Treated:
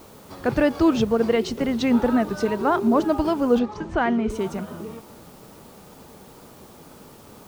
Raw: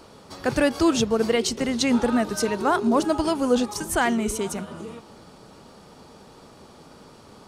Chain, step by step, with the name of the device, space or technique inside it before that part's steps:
cassette deck with a dirty head (head-to-tape spacing loss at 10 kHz 22 dB; tape wow and flutter; white noise bed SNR 30 dB)
0:03.59–0:04.30: high-frequency loss of the air 150 metres
level +2.5 dB

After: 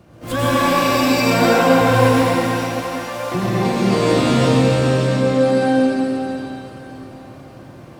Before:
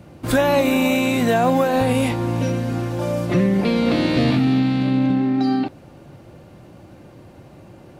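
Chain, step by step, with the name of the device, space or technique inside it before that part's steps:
0:02.17–0:03.33: high-pass filter 360 Hz → 800 Hz 24 dB per octave
shimmer-style reverb (pitch-shifted copies added +12 semitones −5 dB; convolution reverb RT60 3.8 s, pre-delay 85 ms, DRR −8 dB)
level −6 dB

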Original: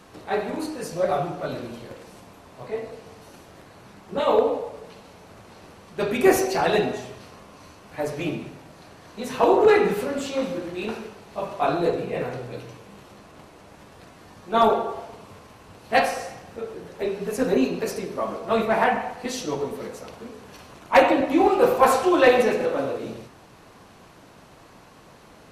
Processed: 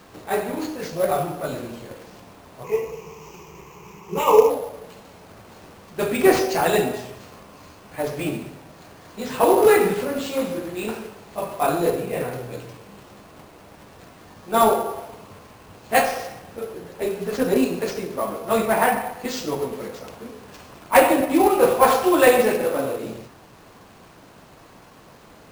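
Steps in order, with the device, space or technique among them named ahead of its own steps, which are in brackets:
early companding sampler (sample-rate reduction 11,000 Hz, jitter 0%; log-companded quantiser 6 bits)
0:02.64–0:04.50: EQ curve with evenly spaced ripples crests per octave 0.76, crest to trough 15 dB
level +1.5 dB

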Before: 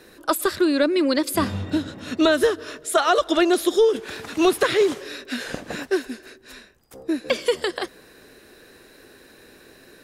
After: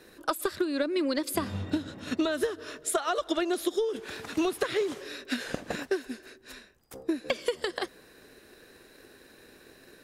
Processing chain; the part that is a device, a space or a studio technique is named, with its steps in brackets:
drum-bus smash (transient designer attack +6 dB, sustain 0 dB; downward compressor 10 to 1, threshold −18 dBFS, peak gain reduction 10.5 dB; soft clipping −7.5 dBFS, distortion −27 dB)
level −5.5 dB

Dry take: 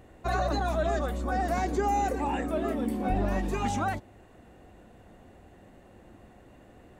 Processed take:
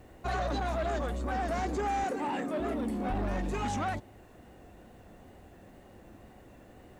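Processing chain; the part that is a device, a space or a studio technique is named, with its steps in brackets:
compact cassette (soft clipping −27 dBFS, distortion −12 dB; low-pass filter 10,000 Hz 12 dB per octave; tape wow and flutter; white noise bed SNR 40 dB)
0:02.04–0:02.60: high-pass filter 130 Hz 24 dB per octave

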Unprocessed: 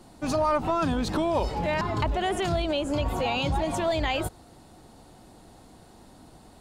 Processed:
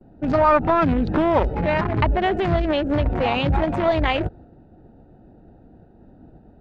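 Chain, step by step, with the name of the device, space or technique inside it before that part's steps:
adaptive Wiener filter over 41 samples
hearing-loss simulation (low-pass filter 3,100 Hz 12 dB per octave; downward expander −49 dBFS)
parametric band 1,600 Hz +4 dB 1.7 octaves
level +7.5 dB

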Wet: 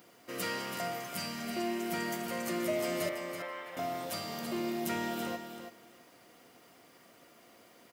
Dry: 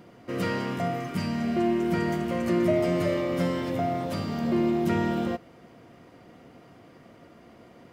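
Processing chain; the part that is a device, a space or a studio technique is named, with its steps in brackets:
0:03.09–0:03.77: three-way crossover with the lows and the highs turned down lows −23 dB, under 580 Hz, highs −24 dB, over 2,600 Hz
turntable without a phono preamp (RIAA equalisation recording; white noise bed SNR 34 dB)
repeating echo 330 ms, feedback 16%, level −8.5 dB
level −6 dB

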